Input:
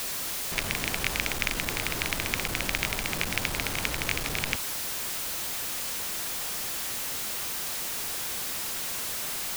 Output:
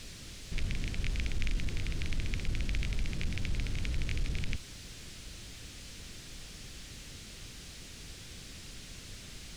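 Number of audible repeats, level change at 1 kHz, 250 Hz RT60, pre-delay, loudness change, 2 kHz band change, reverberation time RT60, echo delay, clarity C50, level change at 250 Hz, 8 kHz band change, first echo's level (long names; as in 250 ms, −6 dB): no echo audible, −19.5 dB, no reverb audible, no reverb audible, −11.0 dB, −13.5 dB, no reverb audible, no echo audible, no reverb audible, −4.5 dB, −16.5 dB, no echo audible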